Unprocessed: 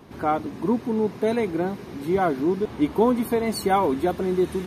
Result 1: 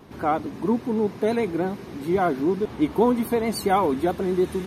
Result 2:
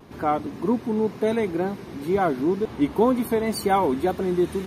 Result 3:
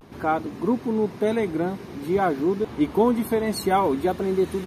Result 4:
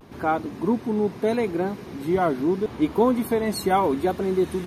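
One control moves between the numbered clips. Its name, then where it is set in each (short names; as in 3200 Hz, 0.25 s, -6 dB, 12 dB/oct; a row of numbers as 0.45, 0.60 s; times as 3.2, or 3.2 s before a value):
vibrato, rate: 9.3, 2, 0.52, 0.78 Hz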